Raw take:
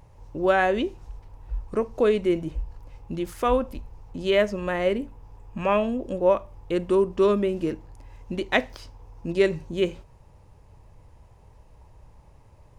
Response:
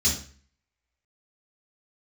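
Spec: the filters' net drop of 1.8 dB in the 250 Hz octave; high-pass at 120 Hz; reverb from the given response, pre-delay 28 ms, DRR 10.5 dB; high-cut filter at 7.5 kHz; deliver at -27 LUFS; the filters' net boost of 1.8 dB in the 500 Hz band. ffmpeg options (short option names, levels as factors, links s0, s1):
-filter_complex "[0:a]highpass=120,lowpass=7500,equalizer=f=250:t=o:g=-5,equalizer=f=500:t=o:g=4,asplit=2[s0][s1];[1:a]atrim=start_sample=2205,adelay=28[s2];[s1][s2]afir=irnorm=-1:irlink=0,volume=0.0944[s3];[s0][s3]amix=inputs=2:normalize=0,volume=0.631"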